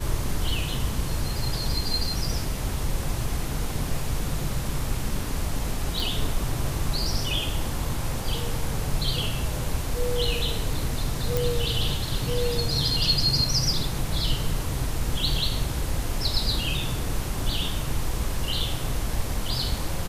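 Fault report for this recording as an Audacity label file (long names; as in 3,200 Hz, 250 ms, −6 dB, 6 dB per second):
6.000000	6.000000	click
11.370000	11.370000	click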